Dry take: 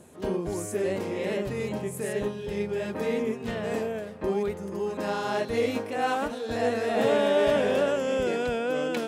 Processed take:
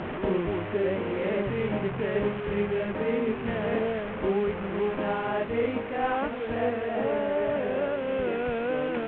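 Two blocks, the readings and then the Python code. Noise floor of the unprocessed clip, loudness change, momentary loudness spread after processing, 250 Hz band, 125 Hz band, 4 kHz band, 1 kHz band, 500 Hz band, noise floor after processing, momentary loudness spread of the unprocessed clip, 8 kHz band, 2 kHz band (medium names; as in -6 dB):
-38 dBFS, -0.5 dB, 2 LU, +0.5 dB, +2.0 dB, -5.5 dB, -0.5 dB, -0.5 dB, -34 dBFS, 9 LU, under -40 dB, 0.0 dB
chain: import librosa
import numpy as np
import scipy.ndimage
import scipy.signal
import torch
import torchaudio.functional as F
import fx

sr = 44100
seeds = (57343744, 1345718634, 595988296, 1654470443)

y = fx.delta_mod(x, sr, bps=16000, step_db=-29.5)
y = fx.rider(y, sr, range_db=4, speed_s=0.5)
y = fx.air_absorb(y, sr, metres=210.0)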